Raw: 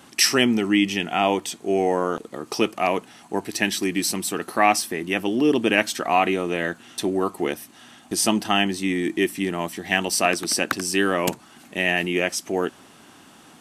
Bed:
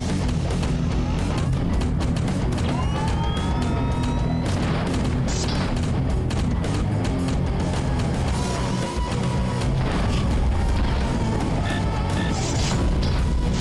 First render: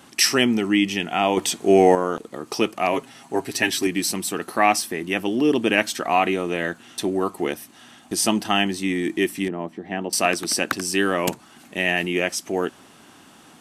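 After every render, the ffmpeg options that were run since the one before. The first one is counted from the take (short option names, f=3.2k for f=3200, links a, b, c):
-filter_complex "[0:a]asettb=1/sr,asplit=3[a][b][c];[a]atrim=end=2.924[d];[b]atrim=start=2.92:end=3.87,asetpts=PTS-STARTPTS,afade=t=in:d=0.004:c=qsin,afade=t=out:st=0.946:d=0.004:c=qsin,aecho=1:1:7.5:0.76,atrim=end_sample=41895[e];[c]atrim=start=3.866[f];[d][e]acrossfade=d=0.004:c1=hsin:c2=qsin[g];[g][f]acrossfade=d=0.004:c1=qsin:c2=hsin,asettb=1/sr,asplit=3[h][i][j];[h]atrim=end=9.484[k];[i]atrim=start=9.48:end=10.13,asetpts=PTS-STARTPTS,afade=t=in:d=0.004:c=qsin,afade=t=out:st=0.646:d=0.004:c=qsin,bandpass=f=320:t=q:w=0.61[l];[j]atrim=start=10.126[m];[k][l]acrossfade=d=0.004:c1=hsin:c2=qsin[n];[n][m]acrossfade=d=0.004:c1=qsin:c2=hsin,asplit=3[o][p][q];[o]atrim=end=1.372[r];[p]atrim=start=1.368:end=1.952,asetpts=PTS-STARTPTS,volume=7dB[s];[q]atrim=start=1.948[t];[r][s]acrossfade=d=0.004:c1=hsin:c2=hsin[u];[u][t]acrossfade=d=0.004:c1=hsin:c2=hsin"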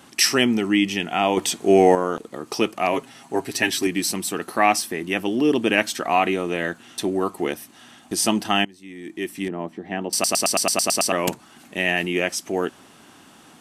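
-filter_complex "[0:a]asplit=11[a][b][c][d][e][f][g][h][i][j][k];[a]atrim=end=8.65,asetpts=PTS-STARTPTS,afade=t=out:st=8.646:d=0.004:c=hsin:silence=0.0891251[l];[b]atrim=start=8.65:end=10.242,asetpts=PTS-STARTPTS,afade=t=in:d=0.92:c=qua:silence=0.0891251[m];[c]atrim=start=10.128:end=10.242[n];[d]atrim=start=10.128:end=10.242[o];[e]atrim=start=10.128:end=10.242[p];[f]atrim=start=10.128:end=10.242[q];[g]atrim=start=10.128:end=10.242[r];[h]atrim=start=10.128:end=10.242[s];[i]atrim=start=10.128:end=10.242[t];[j]atrim=start=10.128:end=10.242[u];[k]atrim=start=11.118[v];[l][m]concat=n=2:v=0:a=1[w];[w][n]acrossfade=d=0.004:c1=hsin:c2=hsin[x];[x][o]acrossfade=d=0.004:c1=hsin:c2=hsin[y];[y][p]acrossfade=d=0.004:c1=hsin:c2=hsin[z];[z][q]acrossfade=d=0.004:c1=hsin:c2=hsin[aa];[aa][r]acrossfade=d=0.004:c1=hsin:c2=hsin[ab];[ab][s]acrossfade=d=0.004:c1=hsin:c2=hsin[ac];[ac][t]acrossfade=d=0.004:c1=hsin:c2=hsin[ad];[ad][u]acrossfade=d=0.004:c1=hsin:c2=hsin[ae];[ae][v]acrossfade=d=0.004:c1=hsin:c2=hsin"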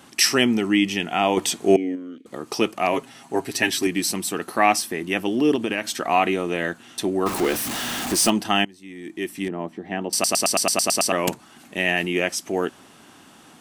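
-filter_complex "[0:a]asettb=1/sr,asplit=3[a][b][c];[a]atrim=end=1.764[d];[b]atrim=start=1.76:end=2.26,asetpts=PTS-STARTPTS,afade=t=in:d=0.004:c=qsin,afade=t=out:st=0.496:d=0.004:c=qsin,asplit=3[e][f][g];[e]bandpass=f=270:t=q:w=8,volume=0dB[h];[f]bandpass=f=2.29k:t=q:w=8,volume=-6dB[i];[g]bandpass=f=3.01k:t=q:w=8,volume=-9dB[j];[h][i][j]amix=inputs=3:normalize=0[k];[c]atrim=start=2.256[l];[d][k]acrossfade=d=0.004:c1=hsin:c2=qsin[m];[m][l]acrossfade=d=0.004:c1=qsin:c2=hsin,asettb=1/sr,asplit=3[n][o][p];[n]atrim=end=5.554[q];[o]atrim=start=5.55:end=5.97,asetpts=PTS-STARTPTS,afade=t=in:d=0.004:c=qsin,afade=t=out:st=0.416:d=0.004:c=qsin,acompressor=threshold=-19dB:ratio=6:attack=3.2:release=140:knee=1:detection=peak[r];[p]atrim=start=5.966[s];[q][r]acrossfade=d=0.004:c1=hsin:c2=qsin[t];[t][s]acrossfade=d=0.004:c1=qsin:c2=hsin,asettb=1/sr,asplit=3[u][v][w];[u]atrim=end=7.264[x];[v]atrim=start=7.26:end=8.3,asetpts=PTS-STARTPTS,afade=t=in:d=0.004:c=qsin,afade=t=out:st=1.036:d=0.004:c=qsin,aeval=exprs='val(0)+0.5*0.075*sgn(val(0))':c=same[y];[w]atrim=start=8.296[z];[x][y]acrossfade=d=0.004:c1=hsin:c2=qsin[aa];[aa][z]acrossfade=d=0.004:c1=qsin:c2=hsin"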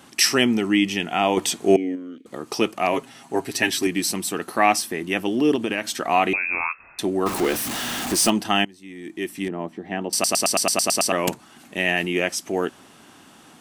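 -filter_complex "[0:a]asettb=1/sr,asplit=3[a][b][c];[a]atrim=end=6.334[d];[b]atrim=start=6.33:end=6.99,asetpts=PTS-STARTPTS,afade=t=in:d=0.004:c=qsin,afade=t=out:st=0.656:d=0.004:c=qsin,lowpass=f=2.4k:t=q:w=0.5098,lowpass=f=2.4k:t=q:w=0.6013,lowpass=f=2.4k:t=q:w=0.9,lowpass=f=2.4k:t=q:w=2.563,afreqshift=-2800[e];[c]atrim=start=6.986[f];[d][e]acrossfade=d=0.004:c1=hsin:c2=qsin[g];[g][f]acrossfade=d=0.004:c1=qsin:c2=hsin"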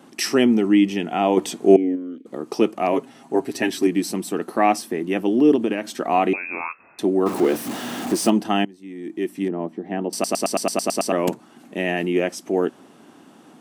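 -af "highpass=220,tiltshelf=f=810:g=7.5"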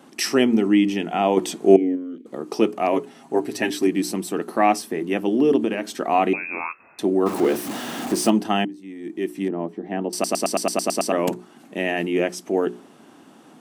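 -af "bandreject=f=60:t=h:w=6,bandreject=f=120:t=h:w=6,bandreject=f=180:t=h:w=6,bandreject=f=240:t=h:w=6,bandreject=f=300:t=h:w=6,bandreject=f=360:t=h:w=6,bandreject=f=420:t=h:w=6"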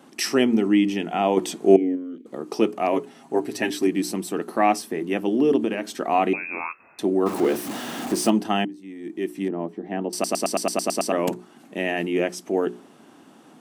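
-af "volume=-1.5dB"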